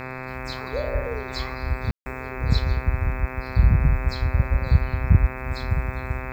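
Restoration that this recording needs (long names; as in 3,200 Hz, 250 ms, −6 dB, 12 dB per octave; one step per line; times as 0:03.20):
click removal
hum removal 129.3 Hz, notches 20
ambience match 0:01.91–0:02.06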